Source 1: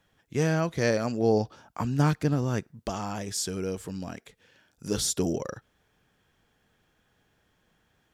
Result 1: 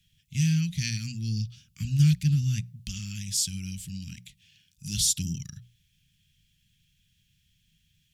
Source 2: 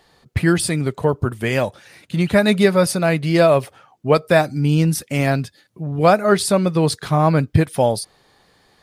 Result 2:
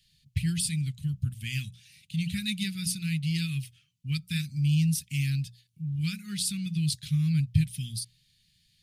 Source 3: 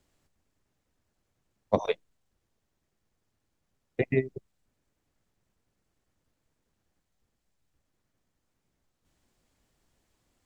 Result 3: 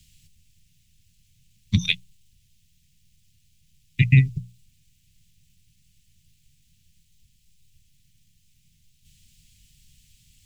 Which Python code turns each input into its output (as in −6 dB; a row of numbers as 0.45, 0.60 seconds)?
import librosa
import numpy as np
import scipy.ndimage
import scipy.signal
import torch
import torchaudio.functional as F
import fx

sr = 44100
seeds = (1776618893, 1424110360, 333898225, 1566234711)

y = scipy.signal.sosfilt(scipy.signal.cheby1(3, 1.0, [160.0, 2700.0], 'bandstop', fs=sr, output='sos'), x)
y = fx.hum_notches(y, sr, base_hz=60, count=3)
y = y * 10.0 ** (-30 / 20.0) / np.sqrt(np.mean(np.square(y)))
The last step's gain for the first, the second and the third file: +5.0, −6.0, +19.0 decibels